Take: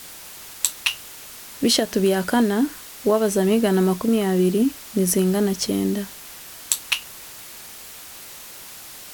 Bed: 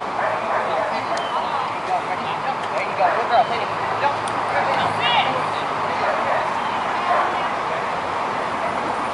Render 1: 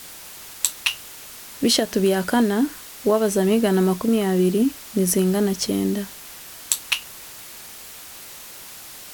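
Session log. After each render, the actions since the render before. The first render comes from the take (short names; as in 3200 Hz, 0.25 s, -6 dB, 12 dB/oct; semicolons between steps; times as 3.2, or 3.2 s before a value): nothing audible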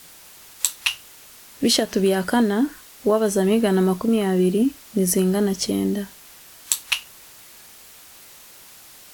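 noise print and reduce 6 dB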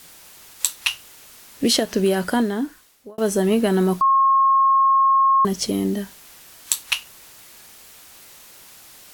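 2.24–3.18 fade out; 4.01–5.45 bleep 1080 Hz -12.5 dBFS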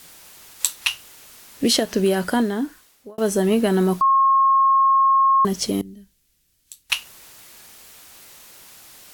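5.81–6.9 passive tone stack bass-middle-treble 10-0-1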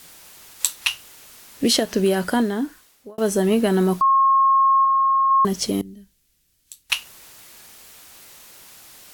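4.8–5.31 doubler 45 ms -11.5 dB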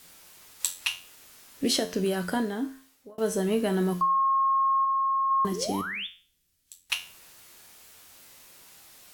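5.51–6.07 painted sound rise 320–3700 Hz -27 dBFS; resonator 89 Hz, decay 0.4 s, harmonics all, mix 70%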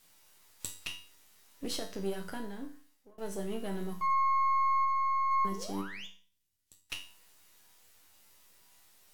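half-wave gain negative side -7 dB; resonator 98 Hz, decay 0.41 s, harmonics all, mix 80%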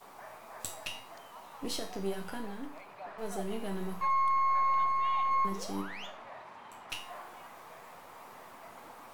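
add bed -27.5 dB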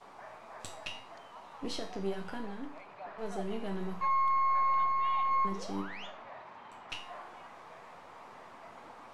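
air absorption 80 m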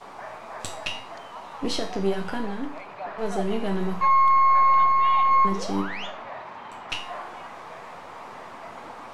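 gain +10.5 dB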